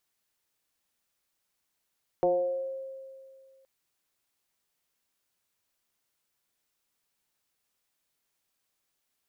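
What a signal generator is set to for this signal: FM tone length 1.42 s, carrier 534 Hz, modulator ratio 0.34, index 1.1, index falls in 1.14 s exponential, decay 2.18 s, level -20 dB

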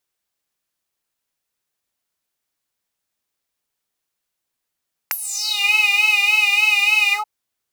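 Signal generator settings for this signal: synth patch with vibrato G#5, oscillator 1 triangle, interval +7 st, oscillator 2 level -14.5 dB, sub -10 dB, noise -26.5 dB, filter highpass, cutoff 840 Hz, Q 7.3, filter envelope 4 oct, filter decay 0.53 s, attack 4.4 ms, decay 0.05 s, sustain -10 dB, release 0.12 s, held 2.01 s, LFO 3.4 Hz, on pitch 58 cents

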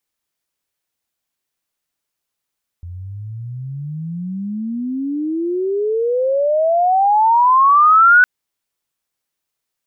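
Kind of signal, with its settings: chirp logarithmic 85 Hz -> 1500 Hz -28 dBFS -> -5.5 dBFS 5.41 s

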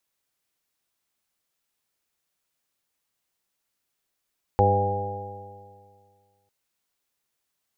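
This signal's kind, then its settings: stretched partials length 1.90 s, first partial 98.4 Hz, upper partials -9/-14/-6/0/-10.5/-12/2 dB, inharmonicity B 0.0011, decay 2.04 s, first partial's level -20 dB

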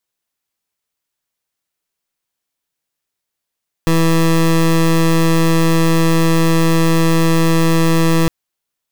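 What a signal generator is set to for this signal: pulse 164 Hz, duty 22% -12 dBFS 4.41 s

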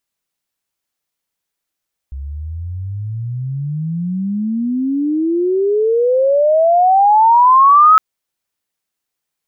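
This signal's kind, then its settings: chirp logarithmic 66 Hz -> 1300 Hz -23.5 dBFS -> -4 dBFS 5.86 s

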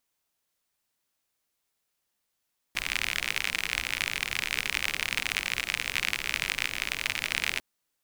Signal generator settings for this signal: rain from filtered ticks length 4.85 s, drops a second 56, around 2300 Hz, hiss -12.5 dB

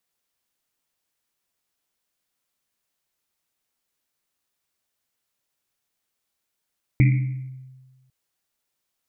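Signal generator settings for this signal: Risset drum, pitch 130 Hz, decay 1.40 s, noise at 2200 Hz, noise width 390 Hz, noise 10%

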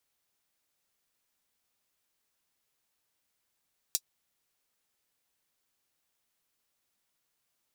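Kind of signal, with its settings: closed hi-hat, high-pass 4900 Hz, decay 0.06 s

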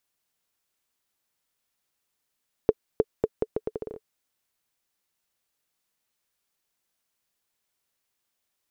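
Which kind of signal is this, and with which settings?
bouncing ball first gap 0.31 s, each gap 0.77, 437 Hz, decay 42 ms -6 dBFS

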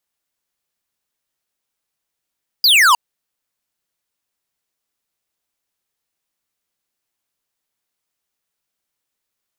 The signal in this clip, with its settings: laser zap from 5000 Hz, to 910 Hz, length 0.31 s square, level -10.5 dB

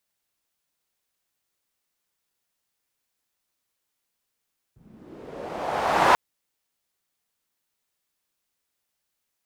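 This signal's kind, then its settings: swept filtered noise pink, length 1.39 s bandpass, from 100 Hz, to 1000 Hz, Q 2, linear, gain ramp +39 dB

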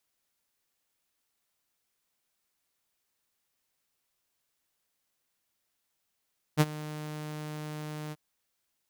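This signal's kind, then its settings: ADSR saw 152 Hz, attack 37 ms, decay 39 ms, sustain -19 dB, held 1.55 s, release 36 ms -15 dBFS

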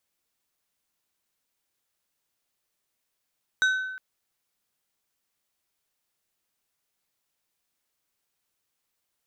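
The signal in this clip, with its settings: glass hit plate, length 0.36 s, lowest mode 1520 Hz, decay 1.10 s, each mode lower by 8.5 dB, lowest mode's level -17.5 dB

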